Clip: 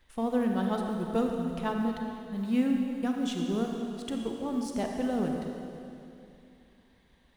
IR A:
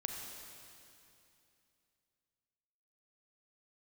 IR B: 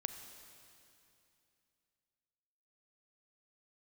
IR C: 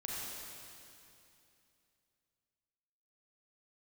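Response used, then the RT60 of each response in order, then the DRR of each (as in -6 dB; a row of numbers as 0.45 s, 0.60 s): A; 2.7 s, 2.7 s, 2.7 s; 2.0 dB, 7.5 dB, -5.0 dB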